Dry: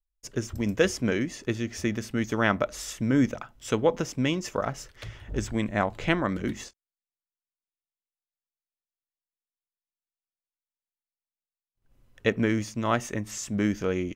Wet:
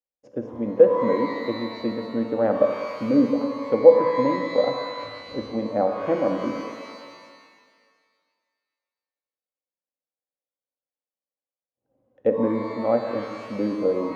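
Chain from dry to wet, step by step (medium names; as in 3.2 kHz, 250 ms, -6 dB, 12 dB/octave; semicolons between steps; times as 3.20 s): high-pass 99 Hz; peaking EQ 580 Hz +15 dB 0.45 oct; small resonant body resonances 290/490/760 Hz, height 17 dB, ringing for 35 ms; low-pass that closes with the level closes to 2.1 kHz, closed at -7.5 dBFS; tape spacing loss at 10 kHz 27 dB; pitch-shifted reverb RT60 1.9 s, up +12 st, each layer -8 dB, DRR 5.5 dB; trim -12 dB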